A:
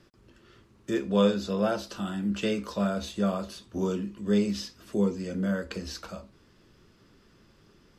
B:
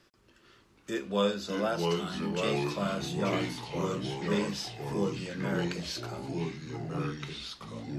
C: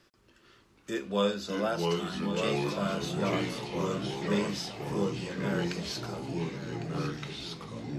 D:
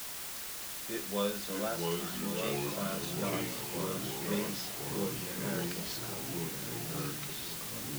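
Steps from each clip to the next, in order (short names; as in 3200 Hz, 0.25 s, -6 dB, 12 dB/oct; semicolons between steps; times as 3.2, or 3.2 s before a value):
low shelf 450 Hz -9.5 dB; echoes that change speed 0.437 s, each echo -3 st, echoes 3
swung echo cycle 1.471 s, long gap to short 3:1, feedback 31%, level -12 dB
requantised 6-bit, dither triangular; gain -5.5 dB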